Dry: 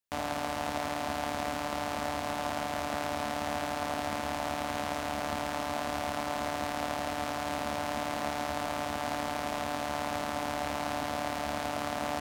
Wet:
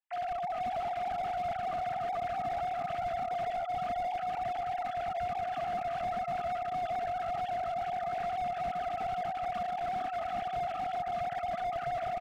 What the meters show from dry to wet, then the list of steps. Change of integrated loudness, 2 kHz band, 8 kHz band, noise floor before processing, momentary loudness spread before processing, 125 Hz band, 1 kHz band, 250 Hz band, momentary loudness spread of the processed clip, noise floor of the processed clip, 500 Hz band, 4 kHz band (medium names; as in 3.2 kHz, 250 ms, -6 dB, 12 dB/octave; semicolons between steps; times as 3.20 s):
-1.0 dB, -7.5 dB, under -15 dB, -36 dBFS, 0 LU, -5.5 dB, +2.0 dB, -13.0 dB, 1 LU, -38 dBFS, 0.0 dB, -11.0 dB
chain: formants replaced by sine waves; on a send: delay 436 ms -4.5 dB; on the sum: slew-rate limiter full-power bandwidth 20 Hz